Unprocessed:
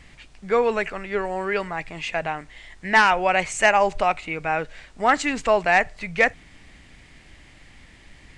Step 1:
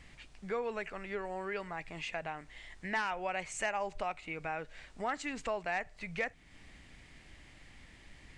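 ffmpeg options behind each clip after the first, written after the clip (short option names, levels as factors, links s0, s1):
-af "acompressor=threshold=0.0224:ratio=2,volume=0.447"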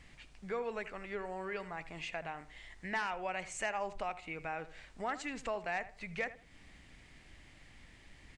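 -filter_complex "[0:a]asplit=2[s0][s1];[s1]adelay=80,lowpass=f=2000:p=1,volume=0.2,asplit=2[s2][s3];[s3]adelay=80,lowpass=f=2000:p=1,volume=0.29,asplit=2[s4][s5];[s5]adelay=80,lowpass=f=2000:p=1,volume=0.29[s6];[s0][s2][s4][s6]amix=inputs=4:normalize=0,volume=0.794"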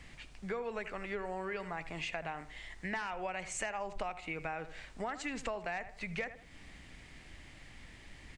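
-filter_complex "[0:a]acrossover=split=130[s0][s1];[s1]acompressor=threshold=0.0112:ratio=6[s2];[s0][s2]amix=inputs=2:normalize=0,volume=1.68"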